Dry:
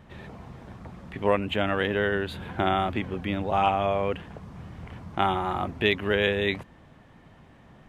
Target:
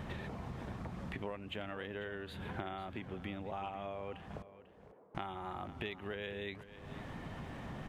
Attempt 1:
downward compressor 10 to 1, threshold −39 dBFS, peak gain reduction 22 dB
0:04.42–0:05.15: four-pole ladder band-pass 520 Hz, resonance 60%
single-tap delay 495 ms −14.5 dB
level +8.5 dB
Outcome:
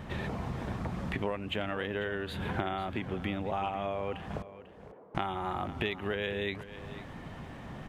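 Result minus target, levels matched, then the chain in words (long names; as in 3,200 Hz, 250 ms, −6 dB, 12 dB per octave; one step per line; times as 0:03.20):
downward compressor: peak gain reduction −8.5 dB
downward compressor 10 to 1, threshold −48.5 dBFS, peak gain reduction 30.5 dB
0:04.42–0:05.15: four-pole ladder band-pass 520 Hz, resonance 60%
single-tap delay 495 ms −14.5 dB
level +8.5 dB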